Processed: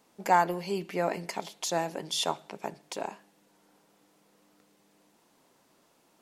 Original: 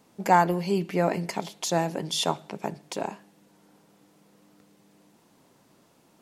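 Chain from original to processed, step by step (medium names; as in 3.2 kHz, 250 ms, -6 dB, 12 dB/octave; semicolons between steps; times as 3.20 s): peaking EQ 110 Hz -9.5 dB 2.6 oct; trim -2.5 dB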